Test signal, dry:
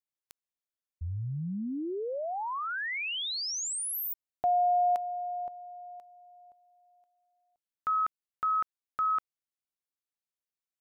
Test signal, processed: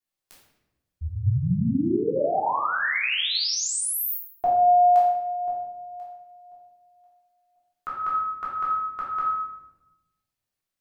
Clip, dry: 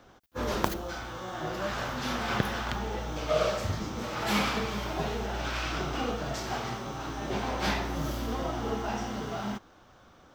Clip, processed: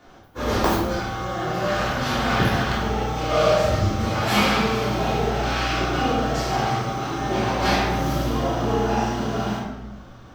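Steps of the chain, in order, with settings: shoebox room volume 400 m³, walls mixed, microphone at 3.3 m

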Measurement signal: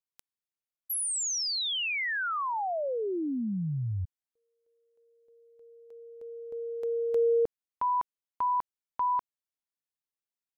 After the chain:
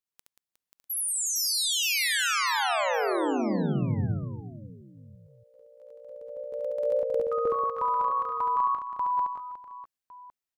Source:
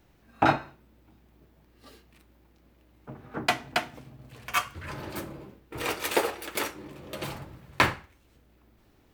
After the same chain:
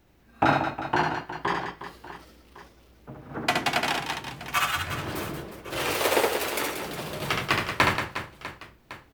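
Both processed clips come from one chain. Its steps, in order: echoes that change speed 0.557 s, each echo +2 st, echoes 2; reverse bouncing-ball echo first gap 70 ms, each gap 1.6×, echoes 5

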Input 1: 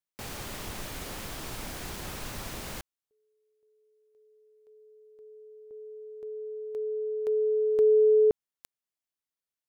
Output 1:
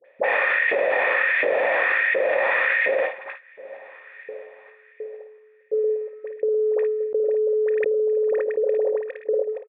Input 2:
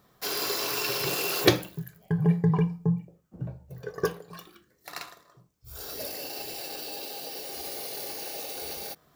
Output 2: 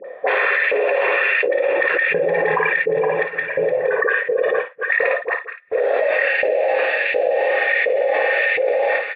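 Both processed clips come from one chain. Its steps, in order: regenerating reverse delay 0.233 s, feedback 71%, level -10.5 dB; gate -45 dBFS, range -31 dB; dynamic EQ 310 Hz, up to +4 dB, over -37 dBFS, Q 0.88; upward compressor, threshold -46 dBFS; dispersion highs, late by 50 ms, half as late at 800 Hz; LFO high-pass saw up 1.4 Hz 460–2100 Hz; vocal tract filter e; on a send: early reflections 29 ms -16.5 dB, 55 ms -8.5 dB; on the sum: fast leveller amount 100%

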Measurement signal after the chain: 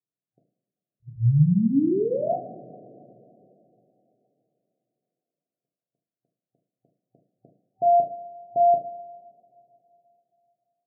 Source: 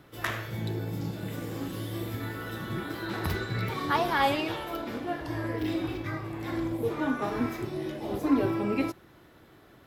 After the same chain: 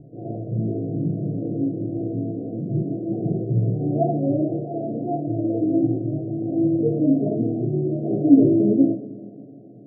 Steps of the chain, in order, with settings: FFT band-pass 110–760 Hz; tilt -4 dB/oct; two-slope reverb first 0.47 s, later 3.4 s, from -21 dB, DRR -0.5 dB

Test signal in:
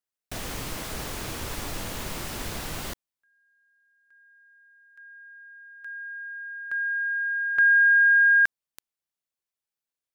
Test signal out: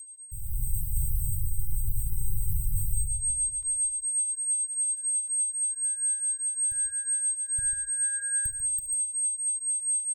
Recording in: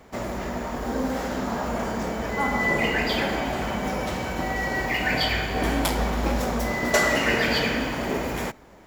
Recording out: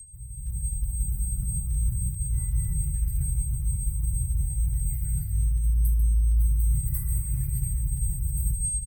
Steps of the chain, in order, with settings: inverse Chebyshev band-stop 220–7100 Hz, stop band 40 dB; low shelf 390 Hz +10 dB; whine 8400 Hz -39 dBFS; shoebox room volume 2400 m³, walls furnished, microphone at 0.67 m; reverse; compressor 8:1, threshold -37 dBFS; reverse; fifteen-band EQ 160 Hz +6 dB, 2500 Hz +6 dB, 16000 Hz +9 dB; crackle 12/s -53 dBFS; on a send: tapped delay 72/142 ms -18.5/-9 dB; on the sum: AGC gain up to 14.5 dB; cascading flanger falling 0.26 Hz

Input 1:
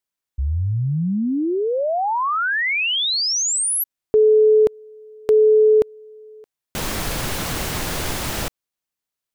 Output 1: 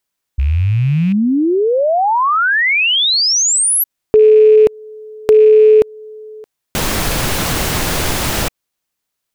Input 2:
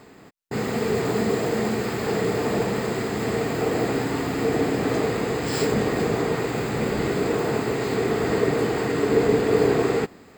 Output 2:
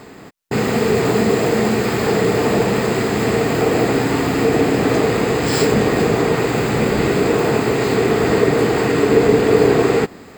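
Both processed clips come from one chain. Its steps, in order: rattling part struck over -30 dBFS, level -31 dBFS; in parallel at -3 dB: compressor, threshold -25 dBFS; on the sum: gain +4.5 dB

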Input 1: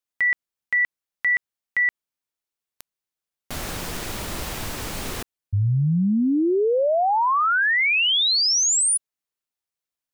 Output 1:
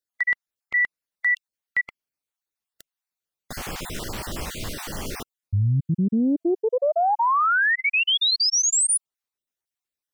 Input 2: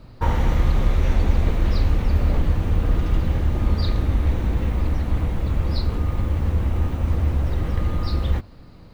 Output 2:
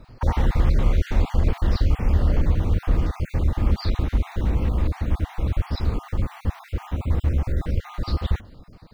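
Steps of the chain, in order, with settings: random spectral dropouts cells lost 32%; Doppler distortion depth 0.25 ms

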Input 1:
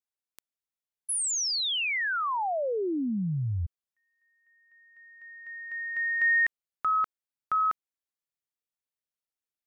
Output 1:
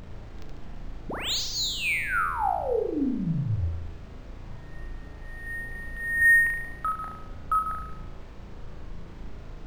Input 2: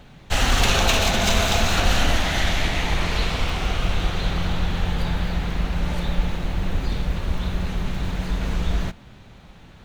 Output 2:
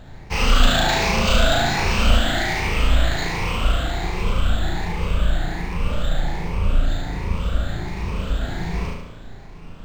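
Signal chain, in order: moving spectral ripple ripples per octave 0.81, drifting +1.3 Hz, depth 14 dB; added noise brown -37 dBFS; on a send: flutter echo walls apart 6.2 m, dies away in 0.79 s; on the sum: decimation joined by straight lines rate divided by 4×; gain -3.5 dB

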